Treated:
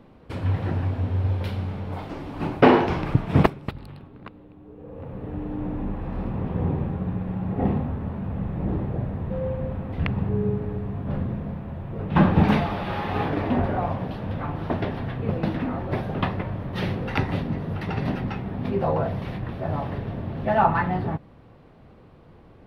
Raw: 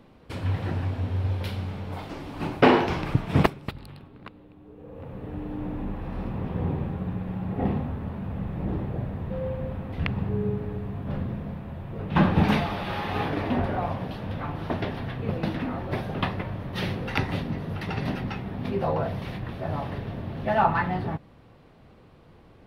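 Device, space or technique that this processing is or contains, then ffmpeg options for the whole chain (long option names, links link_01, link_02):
behind a face mask: -af "highshelf=frequency=2500:gain=-8,volume=3dB"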